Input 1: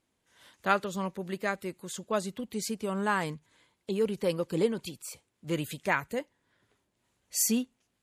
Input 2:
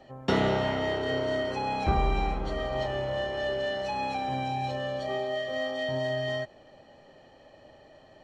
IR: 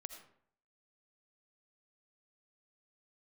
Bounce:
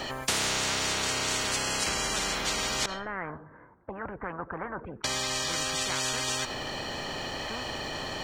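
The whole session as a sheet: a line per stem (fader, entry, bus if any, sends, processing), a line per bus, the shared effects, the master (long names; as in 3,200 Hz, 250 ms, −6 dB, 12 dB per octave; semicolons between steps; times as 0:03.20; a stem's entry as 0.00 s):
−9.0 dB, 0.00 s, send −17 dB, Butterworth low-pass 1,600 Hz 48 dB per octave
−2.0 dB, 0.00 s, muted 0:02.86–0:05.04, send −9 dB, no processing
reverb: on, RT60 0.65 s, pre-delay 40 ms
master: high-shelf EQ 3,600 Hz +8.5 dB; every bin compressed towards the loudest bin 10 to 1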